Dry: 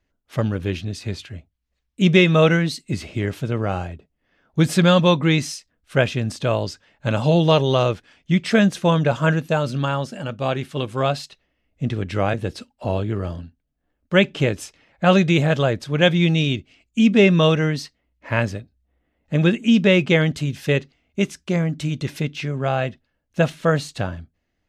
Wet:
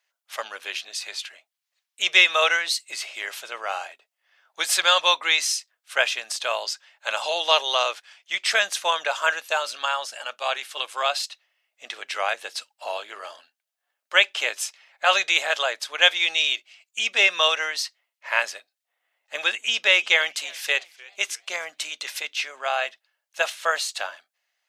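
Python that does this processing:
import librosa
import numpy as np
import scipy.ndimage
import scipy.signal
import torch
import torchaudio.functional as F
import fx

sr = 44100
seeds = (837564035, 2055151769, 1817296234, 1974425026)

y = fx.echo_warbled(x, sr, ms=305, feedback_pct=42, rate_hz=2.8, cents=189, wet_db=-22.5, at=(19.58, 21.84))
y = scipy.signal.sosfilt(scipy.signal.butter(4, 700.0, 'highpass', fs=sr, output='sos'), y)
y = fx.high_shelf(y, sr, hz=2100.0, db=9.0)
y = y * 10.0 ** (-1.0 / 20.0)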